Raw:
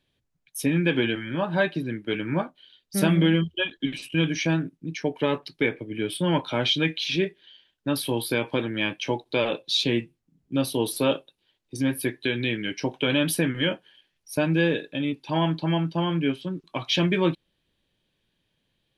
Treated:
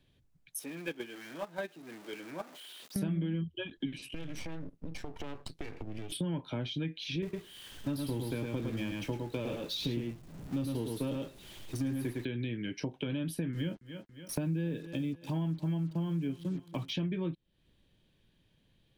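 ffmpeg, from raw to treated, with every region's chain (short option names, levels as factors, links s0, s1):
-filter_complex "[0:a]asettb=1/sr,asplit=3[s0][s1][s2];[s0]atrim=end=0.594[s3];[s1]atrim=start=0.59:end=2.96,asetpts=PTS-STARTPTS,afade=t=in:d=0.004:c=qsin,afade=t=out:st=2.366:d=0.004:c=qsin,aeval=exprs='val(0)+0.5*0.0422*sgn(val(0))':c=same,highpass=410,agate=range=0.141:threshold=0.0708:ratio=16:release=100:detection=peak[s4];[s2]atrim=start=2.956[s5];[s3][s4]acrossfade=d=0.004:c1=hsin:c2=qsin[s6];[s6][s5]acrossfade=d=0.004:c1=qsin:c2=hsin,asettb=1/sr,asplit=3[s7][s8][s9];[s7]atrim=end=4.144[s10];[s8]atrim=start=4.14:end=6.12,asetpts=PTS-STARTPTS,afade=t=in:d=0.004:c=qsin,afade=t=out:st=1.976:d=0.004:c=qsin,acompressor=threshold=0.0224:ratio=6:attack=3.2:release=140:knee=1:detection=peak,aeval=exprs='max(val(0),0)':c=same[s11];[s9]atrim=start=6.116[s12];[s10][s11]acrossfade=d=0.004:c1=hsin:c2=qsin[s13];[s13][s12]acrossfade=d=0.004:c1=qsin:c2=hsin,asettb=1/sr,asplit=3[s14][s15][s16];[s14]atrim=end=7.224[s17];[s15]atrim=start=7.22:end=12.25,asetpts=PTS-STARTPTS,afade=t=in:d=0.004:c=qsin,afade=t=out:st=5.026:d=0.004:c=qsin,aeval=exprs='val(0)+0.5*0.0422*sgn(val(0))':c=same,agate=range=0.0224:threshold=0.0631:ratio=3:release=100:detection=peak,aecho=1:1:107:0.596,atrim=end_sample=221823[s18];[s16]atrim=start=12.246[s19];[s17][s18]acrossfade=d=0.004:c1=hsin:c2=qsin[s20];[s20][s19]acrossfade=d=0.004:c1=qsin:c2=hsin,asettb=1/sr,asplit=3[s21][s22][s23];[s21]atrim=end=13.534[s24];[s22]atrim=start=13.53:end=16.93,asetpts=PTS-STARTPTS,afade=t=in:d=0.004:c=qsin,afade=t=out:st=3.396:d=0.004:c=qsin,equalizer=f=180:w=0.76:g=3.5,acrusher=bits=6:mix=0:aa=0.5,aecho=1:1:280|560|840:0.0841|0.0294|0.0103,atrim=end_sample=149940[s25];[s23]atrim=start=16.926[s26];[s24][s25]acrossfade=d=0.004:c1=hsin:c2=qsin[s27];[s27][s26]acrossfade=d=0.004:c1=qsin:c2=hsin,acrossover=split=350[s28][s29];[s29]acompressor=threshold=0.02:ratio=2[s30];[s28][s30]amix=inputs=2:normalize=0,lowshelf=f=290:g=9,acompressor=threshold=0.0141:ratio=3"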